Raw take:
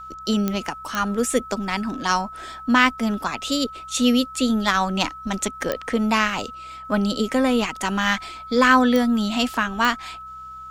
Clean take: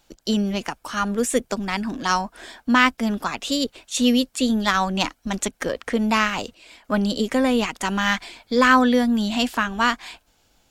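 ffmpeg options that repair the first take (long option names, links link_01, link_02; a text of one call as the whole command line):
ffmpeg -i in.wav -af "adeclick=threshold=4,bandreject=frequency=64:width_type=h:width=4,bandreject=frequency=128:width_type=h:width=4,bandreject=frequency=192:width_type=h:width=4,bandreject=frequency=1300:width=30" out.wav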